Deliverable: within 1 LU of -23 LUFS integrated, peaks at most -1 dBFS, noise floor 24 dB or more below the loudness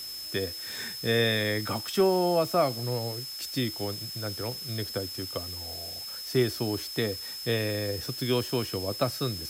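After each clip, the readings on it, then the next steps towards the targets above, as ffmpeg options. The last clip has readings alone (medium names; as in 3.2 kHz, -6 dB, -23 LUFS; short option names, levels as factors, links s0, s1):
steady tone 5.2 kHz; tone level -37 dBFS; noise floor -39 dBFS; noise floor target -54 dBFS; loudness -29.5 LUFS; peak level -12.5 dBFS; loudness target -23.0 LUFS
-> -af "bandreject=f=5200:w=30"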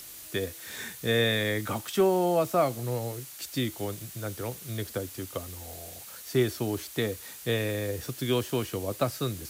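steady tone not found; noise floor -45 dBFS; noise floor target -54 dBFS
-> -af "afftdn=nr=9:nf=-45"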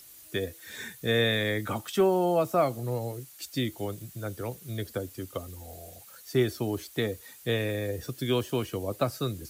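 noise floor -51 dBFS; noise floor target -54 dBFS
-> -af "afftdn=nr=6:nf=-51"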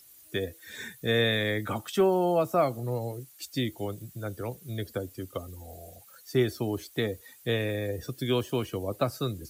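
noise floor -54 dBFS; loudness -30.0 LUFS; peak level -13.0 dBFS; loudness target -23.0 LUFS
-> -af "volume=2.24"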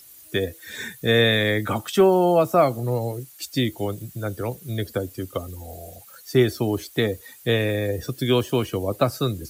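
loudness -23.0 LUFS; peak level -6.0 dBFS; noise floor -47 dBFS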